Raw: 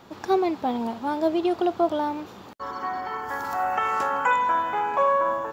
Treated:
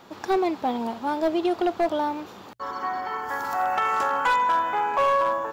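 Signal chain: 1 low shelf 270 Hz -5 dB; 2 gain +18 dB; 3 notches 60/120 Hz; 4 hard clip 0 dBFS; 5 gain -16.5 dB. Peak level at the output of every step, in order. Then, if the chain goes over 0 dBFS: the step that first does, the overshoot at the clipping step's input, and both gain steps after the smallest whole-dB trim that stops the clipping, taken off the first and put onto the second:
-11.0, +7.0, +7.0, 0.0, -16.5 dBFS; step 2, 7.0 dB; step 2 +11 dB, step 5 -9.5 dB

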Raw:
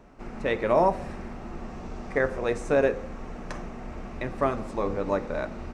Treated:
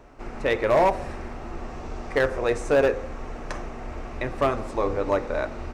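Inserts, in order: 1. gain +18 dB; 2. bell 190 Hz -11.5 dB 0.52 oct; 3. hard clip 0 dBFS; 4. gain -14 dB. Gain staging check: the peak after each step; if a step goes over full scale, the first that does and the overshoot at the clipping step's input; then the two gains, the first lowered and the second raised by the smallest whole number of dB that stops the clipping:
+8.0, +8.0, 0.0, -14.0 dBFS; step 1, 8.0 dB; step 1 +10 dB, step 4 -6 dB

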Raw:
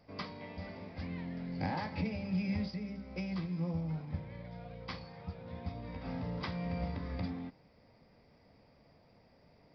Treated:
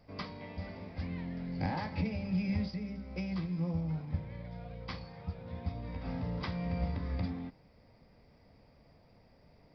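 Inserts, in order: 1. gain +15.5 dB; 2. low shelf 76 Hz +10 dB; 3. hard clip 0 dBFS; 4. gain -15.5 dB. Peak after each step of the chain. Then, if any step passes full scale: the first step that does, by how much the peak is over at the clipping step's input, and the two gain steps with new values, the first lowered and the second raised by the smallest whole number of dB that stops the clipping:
-6.5, -4.5, -4.5, -20.0 dBFS; no overload

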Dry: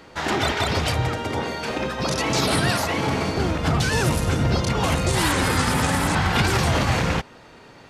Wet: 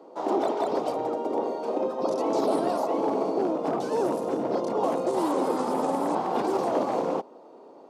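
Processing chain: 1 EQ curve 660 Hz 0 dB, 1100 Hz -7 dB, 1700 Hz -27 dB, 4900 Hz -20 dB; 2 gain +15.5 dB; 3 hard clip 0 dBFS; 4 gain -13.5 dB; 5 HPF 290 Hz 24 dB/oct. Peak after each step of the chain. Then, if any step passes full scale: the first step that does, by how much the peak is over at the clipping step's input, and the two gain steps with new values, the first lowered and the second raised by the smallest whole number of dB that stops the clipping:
-10.0, +5.5, 0.0, -13.5, -13.0 dBFS; step 2, 5.5 dB; step 2 +9.5 dB, step 4 -7.5 dB

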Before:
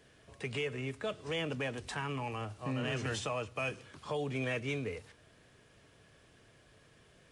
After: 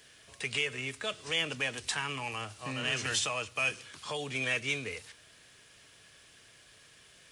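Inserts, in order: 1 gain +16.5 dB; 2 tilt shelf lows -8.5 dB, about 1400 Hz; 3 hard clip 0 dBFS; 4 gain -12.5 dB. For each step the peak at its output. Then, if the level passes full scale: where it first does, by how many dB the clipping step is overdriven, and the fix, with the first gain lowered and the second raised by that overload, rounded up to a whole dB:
-6.5, -3.5, -3.5, -16.0 dBFS; no overload

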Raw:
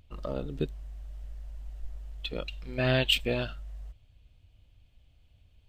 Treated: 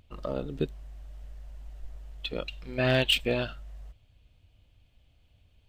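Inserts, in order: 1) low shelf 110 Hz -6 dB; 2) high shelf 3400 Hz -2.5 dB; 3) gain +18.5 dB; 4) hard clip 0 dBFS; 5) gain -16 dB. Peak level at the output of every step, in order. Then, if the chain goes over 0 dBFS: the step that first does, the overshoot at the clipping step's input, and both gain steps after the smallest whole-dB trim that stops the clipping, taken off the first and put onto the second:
-11.5, -12.5, +6.0, 0.0, -16.0 dBFS; step 3, 6.0 dB; step 3 +12.5 dB, step 5 -10 dB

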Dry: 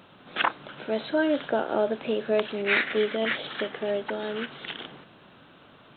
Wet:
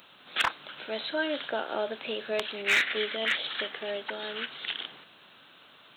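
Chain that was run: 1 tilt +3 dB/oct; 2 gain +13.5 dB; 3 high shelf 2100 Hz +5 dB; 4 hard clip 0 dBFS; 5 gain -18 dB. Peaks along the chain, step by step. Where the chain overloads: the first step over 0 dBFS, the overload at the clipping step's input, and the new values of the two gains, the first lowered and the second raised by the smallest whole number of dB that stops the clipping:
-6.5, +7.0, +9.5, 0.0, -18.0 dBFS; step 2, 9.5 dB; step 2 +3.5 dB, step 5 -8 dB

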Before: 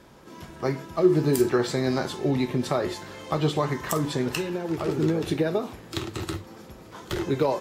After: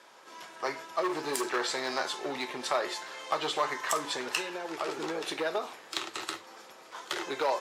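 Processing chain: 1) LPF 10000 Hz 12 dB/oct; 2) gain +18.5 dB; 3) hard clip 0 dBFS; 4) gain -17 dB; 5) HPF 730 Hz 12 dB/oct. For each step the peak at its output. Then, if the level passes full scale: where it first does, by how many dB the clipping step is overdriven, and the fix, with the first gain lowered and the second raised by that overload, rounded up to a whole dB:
-9.0, +9.5, 0.0, -17.0, -14.5 dBFS; step 2, 9.5 dB; step 2 +8.5 dB, step 4 -7 dB

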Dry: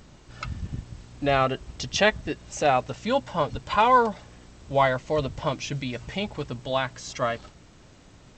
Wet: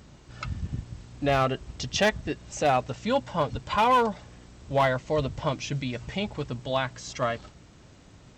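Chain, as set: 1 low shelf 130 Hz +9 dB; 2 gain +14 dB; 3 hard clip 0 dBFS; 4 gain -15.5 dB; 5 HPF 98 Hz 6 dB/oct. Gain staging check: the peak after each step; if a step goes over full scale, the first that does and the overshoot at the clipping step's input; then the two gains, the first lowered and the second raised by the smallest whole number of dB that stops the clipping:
-5.5, +8.5, 0.0, -15.5, -12.5 dBFS; step 2, 8.5 dB; step 2 +5 dB, step 4 -6.5 dB

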